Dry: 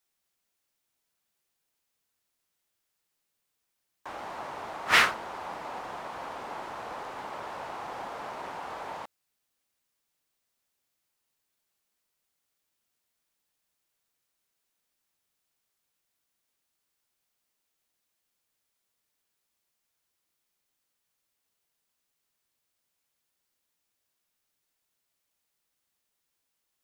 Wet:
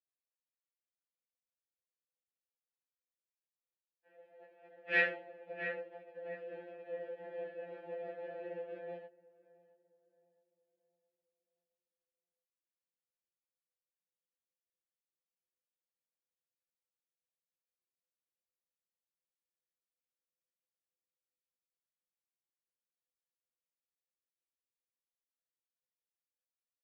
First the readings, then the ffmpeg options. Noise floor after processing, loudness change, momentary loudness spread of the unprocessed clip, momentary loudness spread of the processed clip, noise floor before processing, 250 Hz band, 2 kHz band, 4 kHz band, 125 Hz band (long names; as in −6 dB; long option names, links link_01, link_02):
below −85 dBFS, −8.0 dB, 18 LU, 18 LU, −81 dBFS, −7.0 dB, −7.0 dB, −20.0 dB, −8.5 dB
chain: -filter_complex "[0:a]equalizer=frequency=160:width_type=o:width=0.67:gain=5,equalizer=frequency=400:width_type=o:width=0.67:gain=7,equalizer=frequency=6300:width_type=o:width=0.67:gain=-11,acrossover=split=320|2000[link_01][link_02][link_03];[link_01]dynaudnorm=framelen=790:gausssize=13:maxgain=12dB[link_04];[link_04][link_02][link_03]amix=inputs=3:normalize=0,asplit=2[link_05][link_06];[link_06]adelay=22,volume=-2dB[link_07];[link_05][link_07]amix=inputs=2:normalize=0,asplit=2[link_08][link_09];[link_09]adelay=670,lowpass=frequency=1300:poles=1,volume=-6dB,asplit=2[link_10][link_11];[link_11]adelay=670,lowpass=frequency=1300:poles=1,volume=0.41,asplit=2[link_12][link_13];[link_13]adelay=670,lowpass=frequency=1300:poles=1,volume=0.41,asplit=2[link_14][link_15];[link_15]adelay=670,lowpass=frequency=1300:poles=1,volume=0.41,asplit=2[link_16][link_17];[link_17]adelay=670,lowpass=frequency=1300:poles=1,volume=0.41[link_18];[link_08][link_10][link_12][link_14][link_16][link_18]amix=inputs=6:normalize=0,agate=range=-17dB:threshold=-31dB:ratio=16:detection=peak,asplit=3[link_19][link_20][link_21];[link_19]bandpass=frequency=530:width_type=q:width=8,volume=0dB[link_22];[link_20]bandpass=frequency=1840:width_type=q:width=8,volume=-6dB[link_23];[link_21]bandpass=frequency=2480:width_type=q:width=8,volume=-9dB[link_24];[link_22][link_23][link_24]amix=inputs=3:normalize=0,highshelf=frequency=6700:gain=-10,afftfilt=real='re*2.83*eq(mod(b,8),0)':imag='im*2.83*eq(mod(b,8),0)':win_size=2048:overlap=0.75,volume=2.5dB"